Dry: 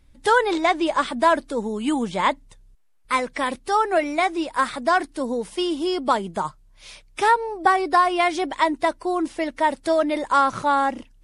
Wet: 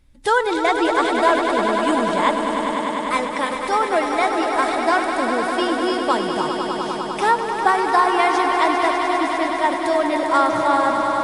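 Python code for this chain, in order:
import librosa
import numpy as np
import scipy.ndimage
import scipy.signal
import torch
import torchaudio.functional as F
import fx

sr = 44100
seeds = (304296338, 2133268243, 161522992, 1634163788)

y = fx.echo_swell(x, sr, ms=100, loudest=5, wet_db=-8.5)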